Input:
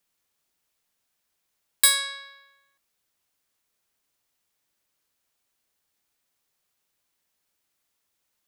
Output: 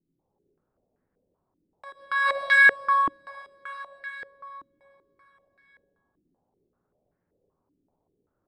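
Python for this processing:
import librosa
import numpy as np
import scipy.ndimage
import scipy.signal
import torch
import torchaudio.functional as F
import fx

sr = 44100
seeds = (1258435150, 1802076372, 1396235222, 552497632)

y = fx.env_lowpass(x, sr, base_hz=410.0, full_db=-33.5)
y = fx.rev_plate(y, sr, seeds[0], rt60_s=4.6, hf_ratio=0.9, predelay_ms=0, drr_db=-7.0)
y = fx.over_compress(y, sr, threshold_db=-22.0, ratio=-0.5)
y = fx.filter_held_lowpass(y, sr, hz=5.2, low_hz=300.0, high_hz=1800.0)
y = F.gain(torch.from_numpy(y), 4.0).numpy()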